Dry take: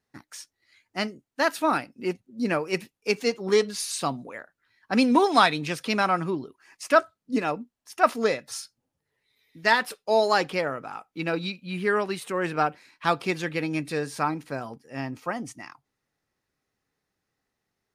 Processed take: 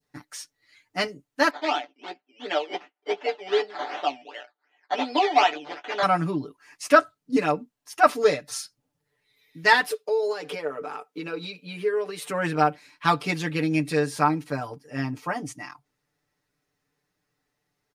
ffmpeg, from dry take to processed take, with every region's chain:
ffmpeg -i in.wav -filter_complex "[0:a]asettb=1/sr,asplit=3[link_01][link_02][link_03];[link_01]atrim=end=1.504[link_04];[link_02]atrim=start=1.5:end=6.03,asetpts=PTS-STARTPTS,afade=type=in:duration=0.004:curve=qsin,afade=type=out:start_time=4.526:duration=0.004:curve=qsin,acrusher=samples=13:mix=1:aa=0.000001:lfo=1:lforange=7.8:lforate=2.7,highpass=frequency=400:width=0.5412,highpass=frequency=400:width=1.3066,equalizer=frequency=490:width_type=q:width=4:gain=-10,equalizer=frequency=750:width_type=q:width=4:gain=5,equalizer=frequency=1100:width_type=q:width=4:gain=-9,equalizer=frequency=1600:width_type=q:width=4:gain=-4,equalizer=frequency=2300:width_type=q:width=4:gain=-4,equalizer=frequency=3900:width_type=q:width=4:gain=-4,lowpass=frequency=4000:width=0.5412,lowpass=frequency=4000:width=1.3066,asplit=2[link_05][link_06];[link_06]adelay=15,volume=-9.5dB[link_07];[link_05][link_07]amix=inputs=2:normalize=0,atrim=end_sample=199773[link_08];[link_03]atrim=start=6.026[link_09];[link_04][link_08]acrossfade=duration=0.004:curve1=hsin:curve2=qsin[link_10];[link_10][link_09]acrossfade=duration=0.004:curve1=qsin:curve2=hsin,asettb=1/sr,asplit=3[link_11][link_12][link_13];[link_11]atrim=end=9.884[link_14];[link_12]atrim=start=9.88:end=12.23,asetpts=PTS-STARTPTS,afade=type=in:duration=0.004:curve=qsin,afade=type=out:start_time=2.346:duration=0.004:curve=qsin,acompressor=threshold=-32dB:ratio=8:attack=3.2:release=140:knee=1:detection=peak,highpass=240,equalizer=frequency=440:width_type=o:width=0.28:gain=13.5[link_15];[link_13]atrim=start=12.226[link_16];[link_14][link_15]acrossfade=duration=0.004:curve1=hsin:curve2=qsin[link_17];[link_17][link_16]acrossfade=duration=0.004:curve1=qsin:curve2=hsin,adynamicequalizer=threshold=0.0141:dfrequency=1400:dqfactor=0.87:tfrequency=1400:tqfactor=0.87:attack=5:release=100:ratio=0.375:range=2.5:mode=cutabove:tftype=bell,aecho=1:1:6.8:0.99" out.wav

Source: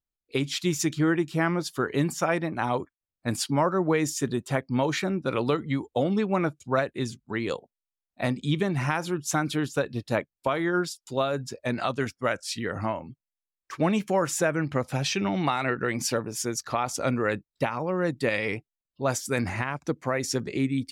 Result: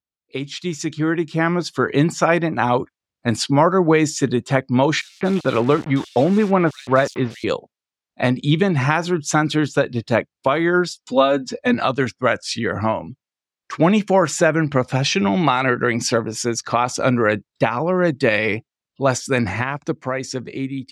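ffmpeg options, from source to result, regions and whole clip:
ffmpeg -i in.wav -filter_complex "[0:a]asettb=1/sr,asplit=3[link_01][link_02][link_03];[link_01]atrim=end=5.014[link_04];[link_02]atrim=start=5.01:end=7.44,asetpts=PTS-STARTPTS,afade=type=in:duration=0.004:curve=qsin,afade=type=out:start_time=2.426:duration=0.004:curve=qsin,aeval=exprs='val(0)*gte(abs(val(0)),0.0158)':channel_layout=same,acrossover=split=3200[link_05][link_06];[link_05]adelay=200[link_07];[link_07][link_06]amix=inputs=2:normalize=0,atrim=end_sample=107163[link_08];[link_03]atrim=start=7.436[link_09];[link_04][link_08]acrossfade=duration=0.004:curve1=hsin:curve2=qsin[link_10];[link_10][link_09]acrossfade=duration=0.004:curve1=qsin:curve2=hsin,asettb=1/sr,asplit=3[link_11][link_12][link_13];[link_11]atrim=end=11.004[link_14];[link_12]atrim=start=11:end=11.74,asetpts=PTS-STARTPTS,afade=type=in:duration=0.004:curve=qsin,afade=type=out:start_time=0.736:duration=0.004:curve=qsin,highshelf=frequency=11000:gain=-11.5,aecho=1:1:4:0.88,atrim=end_sample=32634[link_15];[link_13]atrim=start=11.736[link_16];[link_14][link_15]acrossfade=duration=0.004:curve1=hsin:curve2=qsin[link_17];[link_17][link_16]acrossfade=duration=0.004:curve1=qsin:curve2=hsin,highpass=79,dynaudnorm=framelen=250:gausssize=11:maxgain=11dB,lowpass=6400" out.wav

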